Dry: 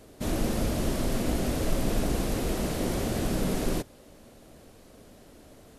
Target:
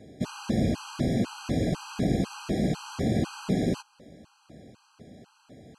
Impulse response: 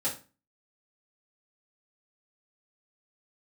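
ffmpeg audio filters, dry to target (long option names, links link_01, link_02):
-af "highpass=130,lowpass=5700,bass=frequency=250:gain=10,treble=frequency=4000:gain=2,afftfilt=real='re*gt(sin(2*PI*2*pts/sr)*(1-2*mod(floor(b*sr/1024/810),2)),0)':imag='im*gt(sin(2*PI*2*pts/sr)*(1-2*mod(floor(b*sr/1024/810),2)),0)':win_size=1024:overlap=0.75,volume=1dB"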